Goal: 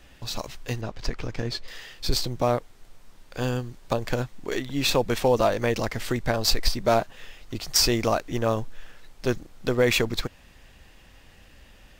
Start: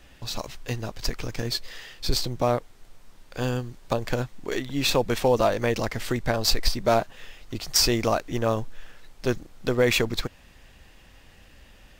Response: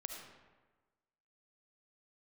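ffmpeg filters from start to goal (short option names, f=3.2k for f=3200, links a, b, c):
-filter_complex "[0:a]asettb=1/sr,asplit=3[a][b][c];[a]atrim=end=0.814[d];[b]atrim=start=0.81:end=1.68,asetpts=PTS-STARTPTS,afade=t=in:d=0.004:c=qsin,afade=t=out:st=0.866:d=0.004:c=qsin,aemphasis=mode=reproduction:type=50fm[e];[c]atrim=start=1.676[f];[d][e]acrossfade=d=0.004:c1=hsin:c2=qsin[g];[g][f]acrossfade=d=0.004:c1=qsin:c2=hsin"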